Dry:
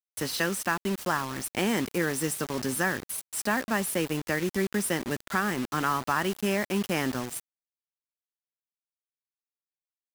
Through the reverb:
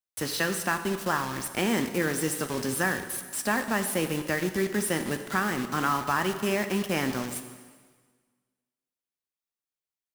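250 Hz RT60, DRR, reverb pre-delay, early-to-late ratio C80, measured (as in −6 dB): 1.5 s, 7.5 dB, 6 ms, 11.0 dB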